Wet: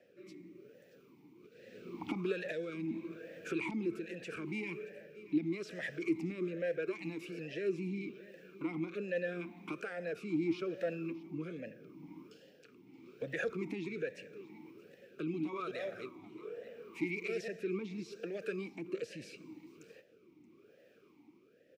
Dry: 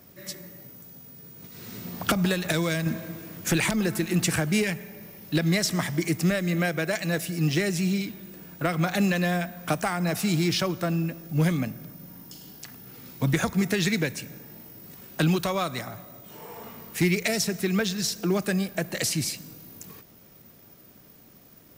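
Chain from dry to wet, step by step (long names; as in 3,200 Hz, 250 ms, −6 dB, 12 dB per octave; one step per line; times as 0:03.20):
0:15.15–0:17.48: delay that plays each chunk backwards 188 ms, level −5 dB
brickwall limiter −22 dBFS, peak gain reduction 10 dB
rotating-speaker cabinet horn 0.8 Hz
single-tap delay 626 ms −18.5 dB
formant filter swept between two vowels e-u 1.2 Hz
level +6.5 dB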